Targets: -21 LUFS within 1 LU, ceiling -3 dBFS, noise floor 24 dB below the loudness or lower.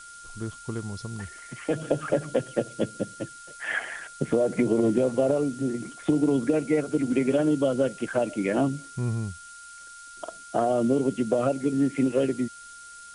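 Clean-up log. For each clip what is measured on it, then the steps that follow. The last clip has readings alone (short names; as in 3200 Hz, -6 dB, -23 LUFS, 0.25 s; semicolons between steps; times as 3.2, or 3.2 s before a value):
steady tone 1400 Hz; tone level -44 dBFS; noise floor -45 dBFS; noise floor target -51 dBFS; loudness -26.5 LUFS; peak -10.0 dBFS; loudness target -21.0 LUFS
-> notch 1400 Hz, Q 30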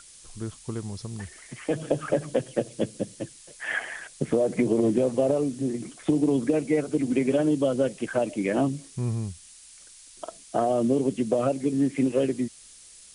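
steady tone none; noise floor -50 dBFS; noise floor target -51 dBFS
-> noise print and reduce 6 dB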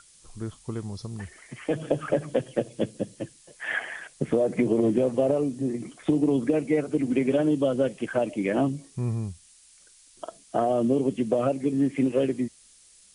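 noise floor -56 dBFS; loudness -26.5 LUFS; peak -10.0 dBFS; loudness target -21.0 LUFS
-> gain +5.5 dB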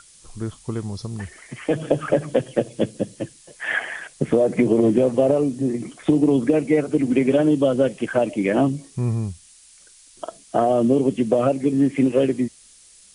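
loudness -21.0 LUFS; peak -4.5 dBFS; noise floor -50 dBFS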